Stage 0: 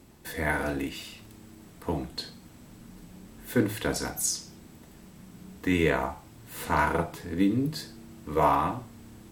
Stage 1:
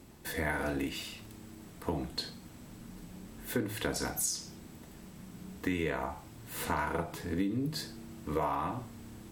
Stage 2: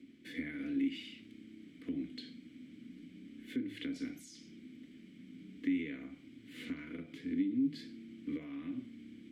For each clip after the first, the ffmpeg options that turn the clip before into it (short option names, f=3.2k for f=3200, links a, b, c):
-af "acompressor=threshold=-29dB:ratio=6"
-filter_complex "[0:a]acrossover=split=140[a][b];[b]acompressor=threshold=-34dB:ratio=3[c];[a][c]amix=inputs=2:normalize=0,asplit=3[d][e][f];[d]bandpass=f=270:t=q:w=8,volume=0dB[g];[e]bandpass=f=2.29k:t=q:w=8,volume=-6dB[h];[f]bandpass=f=3.01k:t=q:w=8,volume=-9dB[i];[g][h][i]amix=inputs=3:normalize=0,volume=7.5dB"